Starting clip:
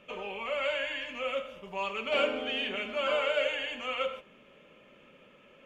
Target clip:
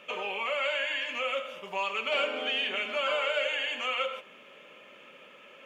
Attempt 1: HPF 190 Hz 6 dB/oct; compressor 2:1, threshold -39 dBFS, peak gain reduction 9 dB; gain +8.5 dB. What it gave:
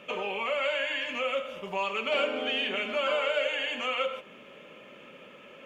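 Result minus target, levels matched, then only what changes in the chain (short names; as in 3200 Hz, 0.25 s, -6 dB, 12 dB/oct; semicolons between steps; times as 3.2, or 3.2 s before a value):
250 Hz band +6.5 dB
change: HPF 740 Hz 6 dB/oct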